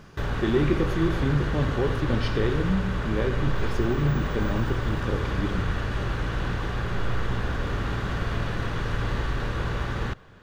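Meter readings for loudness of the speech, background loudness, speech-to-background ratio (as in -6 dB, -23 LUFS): -28.0 LUFS, -29.5 LUFS, 1.5 dB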